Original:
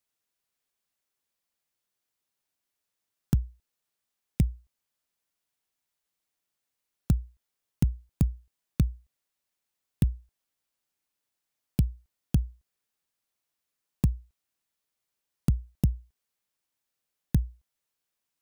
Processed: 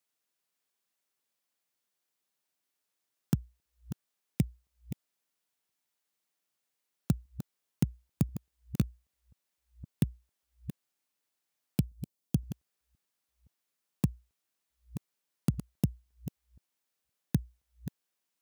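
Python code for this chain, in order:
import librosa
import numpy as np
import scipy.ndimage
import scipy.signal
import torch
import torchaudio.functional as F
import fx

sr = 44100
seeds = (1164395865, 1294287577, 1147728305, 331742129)

y = fx.reverse_delay(x, sr, ms=518, wet_db=-12)
y = scipy.signal.sosfilt(scipy.signal.butter(2, 140.0, 'highpass', fs=sr, output='sos'), y)
y = fx.peak_eq(y, sr, hz=1600.0, db=-9.0, octaves=2.2, at=(11.82, 12.42))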